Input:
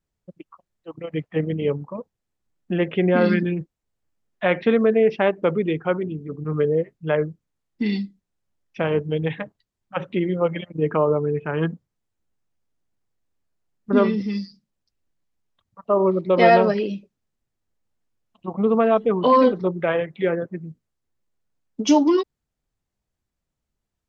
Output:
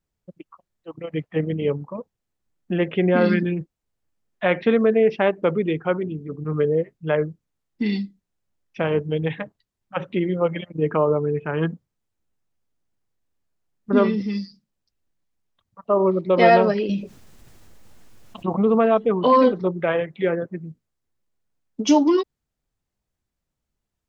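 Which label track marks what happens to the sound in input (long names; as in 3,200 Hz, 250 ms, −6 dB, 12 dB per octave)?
16.890000	18.860000	envelope flattener amount 50%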